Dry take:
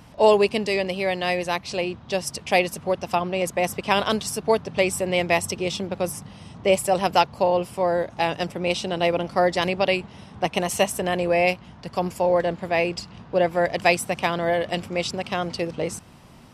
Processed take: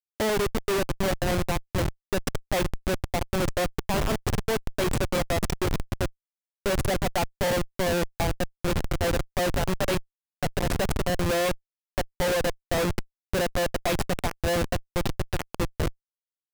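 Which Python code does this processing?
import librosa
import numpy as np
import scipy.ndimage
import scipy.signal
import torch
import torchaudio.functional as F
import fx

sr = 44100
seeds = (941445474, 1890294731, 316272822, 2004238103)

y = fx.spec_box(x, sr, start_s=2.87, length_s=0.33, low_hz=870.0, high_hz=2700.0, gain_db=-6)
y = fx.echo_wet_highpass(y, sr, ms=127, feedback_pct=77, hz=3700.0, wet_db=-18.5)
y = fx.schmitt(y, sr, flips_db=-21.5)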